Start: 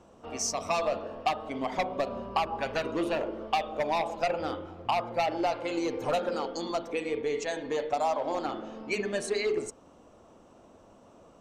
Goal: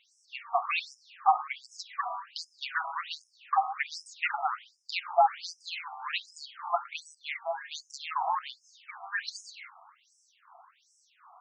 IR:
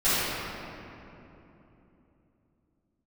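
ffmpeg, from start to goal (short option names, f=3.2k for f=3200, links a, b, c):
-filter_complex "[0:a]asplit=2[a][b];[1:a]atrim=start_sample=2205,afade=t=out:st=0.43:d=0.01,atrim=end_sample=19404[c];[b][c]afir=irnorm=-1:irlink=0,volume=-31.5dB[d];[a][d]amix=inputs=2:normalize=0,afftfilt=real='re*between(b*sr/1024,940*pow(7200/940,0.5+0.5*sin(2*PI*1.3*pts/sr))/1.41,940*pow(7200/940,0.5+0.5*sin(2*PI*1.3*pts/sr))*1.41)':imag='im*between(b*sr/1024,940*pow(7200/940,0.5+0.5*sin(2*PI*1.3*pts/sr))/1.41,940*pow(7200/940,0.5+0.5*sin(2*PI*1.3*pts/sr))*1.41)':win_size=1024:overlap=0.75,volume=8.5dB"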